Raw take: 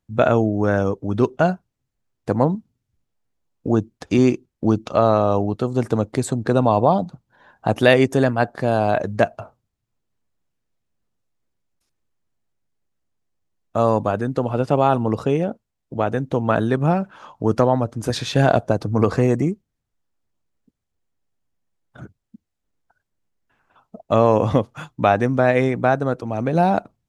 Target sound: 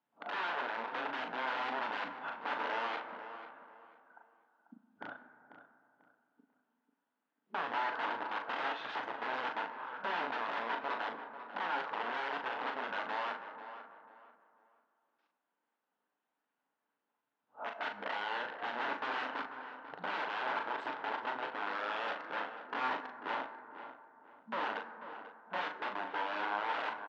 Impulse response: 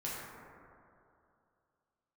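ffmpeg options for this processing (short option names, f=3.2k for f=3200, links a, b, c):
-filter_complex "[0:a]areverse,acompressor=threshold=-41dB:ratio=2,aeval=exprs='(mod(39.8*val(0)+1,2)-1)/39.8':c=same,highpass=f=290:w=0.5412,highpass=f=290:w=1.3066,equalizer=f=370:t=q:w=4:g=-8,equalizer=f=550:t=q:w=4:g=-3,equalizer=f=900:t=q:w=4:g=7,equalizer=f=1.5k:t=q:w=4:g=5,equalizer=f=2.3k:t=q:w=4:g=-4,lowpass=f=3k:w=0.5412,lowpass=f=3k:w=1.3066,asplit=2[a][b];[b]adelay=39,volume=-6dB[c];[a][c]amix=inputs=2:normalize=0,asplit=2[d][e];[e]adelay=492,lowpass=f=2.2k:p=1,volume=-11dB,asplit=2[f][g];[g]adelay=492,lowpass=f=2.2k:p=1,volume=0.3,asplit=2[h][i];[i]adelay=492,lowpass=f=2.2k:p=1,volume=0.3[j];[d][f][h][j]amix=inputs=4:normalize=0,asplit=2[k][l];[1:a]atrim=start_sample=2205,adelay=7[m];[l][m]afir=irnorm=-1:irlink=0,volume=-12dB[n];[k][n]amix=inputs=2:normalize=0"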